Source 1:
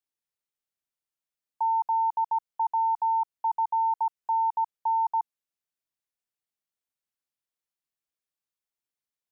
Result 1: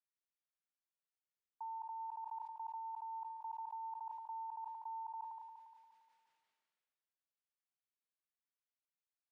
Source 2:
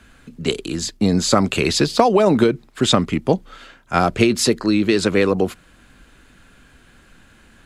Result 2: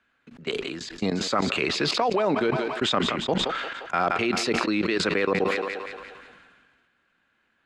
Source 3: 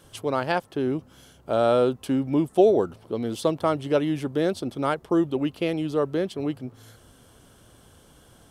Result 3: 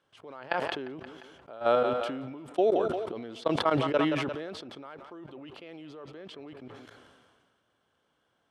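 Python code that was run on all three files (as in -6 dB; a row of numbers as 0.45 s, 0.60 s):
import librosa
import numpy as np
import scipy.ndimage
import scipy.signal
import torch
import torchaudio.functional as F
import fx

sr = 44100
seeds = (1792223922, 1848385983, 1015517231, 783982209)

y = fx.tilt_eq(x, sr, slope=3.5)
y = fx.level_steps(y, sr, step_db=22)
y = scipy.signal.sosfilt(scipy.signal.butter(2, 2100.0, 'lowpass', fs=sr, output='sos'), y)
y = fx.low_shelf(y, sr, hz=71.0, db=-7.5)
y = fx.echo_thinned(y, sr, ms=175, feedback_pct=52, hz=350.0, wet_db=-18.0)
y = fx.sustainer(y, sr, db_per_s=32.0)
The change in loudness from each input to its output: -19.0 LU, -7.0 LU, -4.5 LU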